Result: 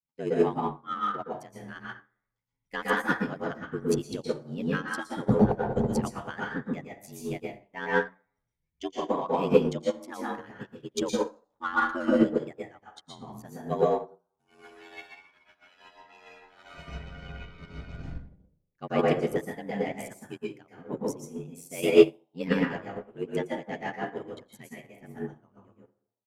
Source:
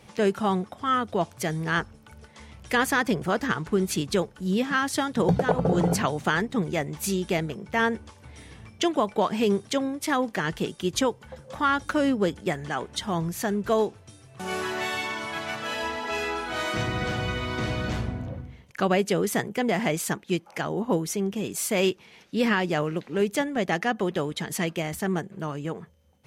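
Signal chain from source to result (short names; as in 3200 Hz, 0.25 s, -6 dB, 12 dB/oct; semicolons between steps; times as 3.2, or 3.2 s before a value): per-bin expansion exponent 1.5; ring modulator 45 Hz; transient shaper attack 0 dB, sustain -12 dB; on a send: frequency-shifting echo 89 ms, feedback 61%, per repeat +110 Hz, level -23 dB; on the sum: plate-style reverb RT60 0.69 s, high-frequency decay 0.5×, pre-delay 0.105 s, DRR -4 dB; in parallel at -9 dB: soft clip -26 dBFS, distortion -8 dB; on the sum: upward expander 2.5:1, over -40 dBFS; gain +5.5 dB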